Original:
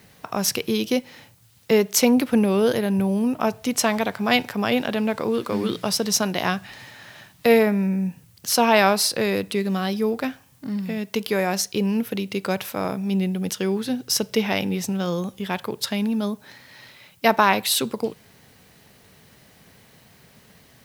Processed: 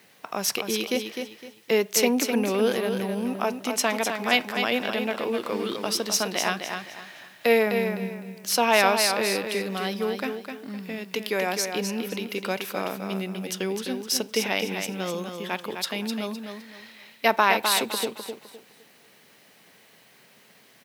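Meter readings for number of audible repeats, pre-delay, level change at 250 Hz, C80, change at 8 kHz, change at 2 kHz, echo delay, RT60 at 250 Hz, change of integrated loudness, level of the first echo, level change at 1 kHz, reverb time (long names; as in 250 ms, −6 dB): 3, no reverb audible, −7.0 dB, no reverb audible, −2.5 dB, 0.0 dB, 256 ms, no reverb audible, −3.0 dB, −6.5 dB, −2.0 dB, no reverb audible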